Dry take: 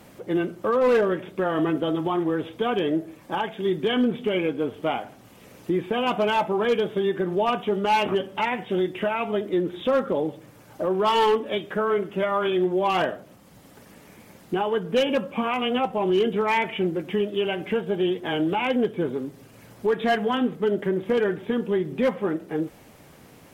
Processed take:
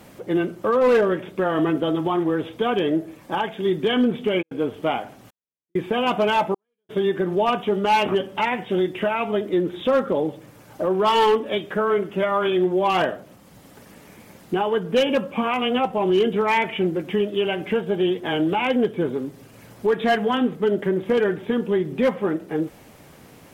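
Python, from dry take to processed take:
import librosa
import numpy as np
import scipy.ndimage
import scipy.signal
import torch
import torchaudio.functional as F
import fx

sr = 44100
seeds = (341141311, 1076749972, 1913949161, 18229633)

y = fx.step_gate(x, sr, bpm=133, pattern='xxx....xxxx', floor_db=-60.0, edge_ms=4.5, at=(4.41, 6.89), fade=0.02)
y = y * librosa.db_to_amplitude(2.5)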